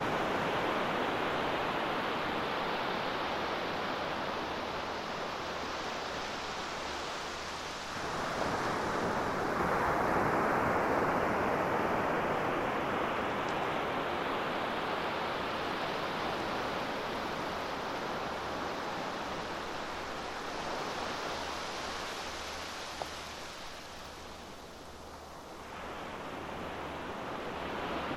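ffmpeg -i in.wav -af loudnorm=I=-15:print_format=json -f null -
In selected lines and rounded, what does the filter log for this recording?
"input_i" : "-34.8",
"input_tp" : "-17.0",
"input_lra" : "9.6",
"input_thresh" : "-45.1",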